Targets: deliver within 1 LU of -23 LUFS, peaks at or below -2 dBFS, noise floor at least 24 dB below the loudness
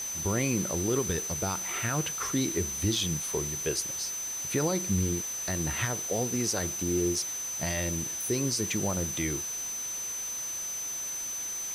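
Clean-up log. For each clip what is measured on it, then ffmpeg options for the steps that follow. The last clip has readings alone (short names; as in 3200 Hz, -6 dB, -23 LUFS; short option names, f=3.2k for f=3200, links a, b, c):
steady tone 6100 Hz; tone level -33 dBFS; noise floor -35 dBFS; noise floor target -54 dBFS; loudness -29.5 LUFS; peak -16.0 dBFS; loudness target -23.0 LUFS
-> -af "bandreject=f=6.1k:w=30"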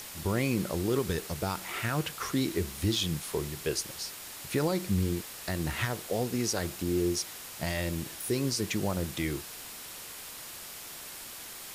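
steady tone none; noise floor -44 dBFS; noise floor target -57 dBFS
-> -af "afftdn=nr=13:nf=-44"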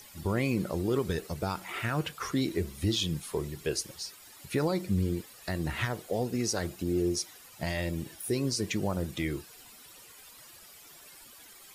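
noise floor -53 dBFS; noise floor target -56 dBFS
-> -af "afftdn=nr=6:nf=-53"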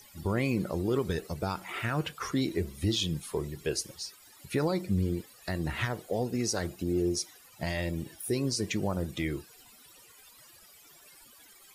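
noise floor -56 dBFS; loudness -32.0 LUFS; peak -18.5 dBFS; loudness target -23.0 LUFS
-> -af "volume=9dB"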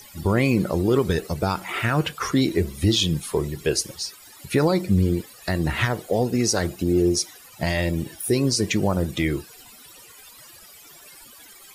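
loudness -23.0 LUFS; peak -9.5 dBFS; noise floor -47 dBFS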